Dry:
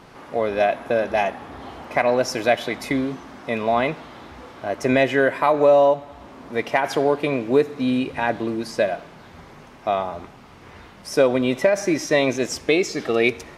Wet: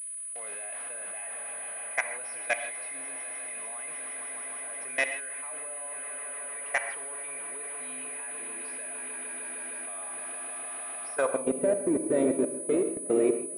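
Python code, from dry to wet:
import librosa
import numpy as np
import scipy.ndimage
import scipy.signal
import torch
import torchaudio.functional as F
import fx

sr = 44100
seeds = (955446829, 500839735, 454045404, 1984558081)

p1 = fx.fade_in_head(x, sr, length_s=1.09)
p2 = p1 + fx.echo_swell(p1, sr, ms=153, loudest=5, wet_db=-13.0, dry=0)
p3 = fx.dmg_crackle(p2, sr, seeds[0], per_s=360.0, level_db=-31.0)
p4 = fx.filter_sweep_bandpass(p3, sr, from_hz=2100.0, to_hz=330.0, start_s=11.07, end_s=11.58, q=1.4)
p5 = 10.0 ** (-26.0 / 20.0) * np.tanh(p4 / 10.0 ** (-26.0 / 20.0))
p6 = p4 + (p5 * librosa.db_to_amplitude(-7.5))
p7 = fx.level_steps(p6, sr, step_db=22)
p8 = fx.rev_gated(p7, sr, seeds[1], gate_ms=180, shape='flat', drr_db=7.5)
p9 = fx.vibrato(p8, sr, rate_hz=0.39, depth_cents=29.0)
p10 = fx.pwm(p9, sr, carrier_hz=9900.0)
y = p10 * librosa.db_to_amplitude(-2.0)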